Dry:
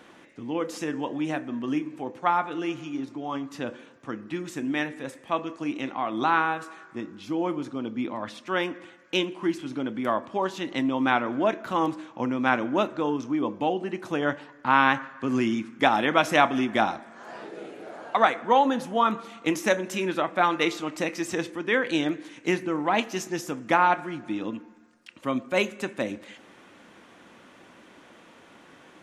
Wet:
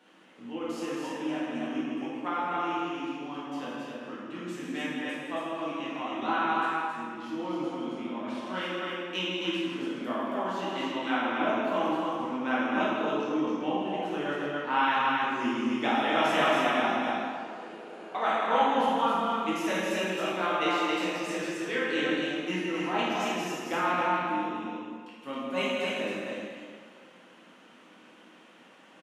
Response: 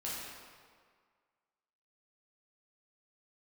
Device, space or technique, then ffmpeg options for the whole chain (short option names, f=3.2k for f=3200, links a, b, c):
stadium PA: -filter_complex "[0:a]highpass=f=150:w=0.5412,highpass=f=150:w=1.3066,equalizer=f=2.9k:t=o:w=0.32:g=5,aecho=1:1:160.3|271.1:0.355|0.708[a];[1:a]atrim=start_sample=2205[b];[a][b]afir=irnorm=-1:irlink=0,volume=-7.5dB"